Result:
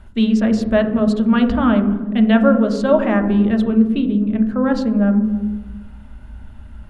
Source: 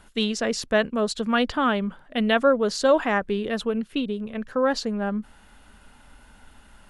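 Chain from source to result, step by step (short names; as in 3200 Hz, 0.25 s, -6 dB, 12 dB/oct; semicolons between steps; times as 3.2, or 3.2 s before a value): tone controls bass +10 dB, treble -9 dB; on a send: reverb RT60 1.2 s, pre-delay 3 ms, DRR 4 dB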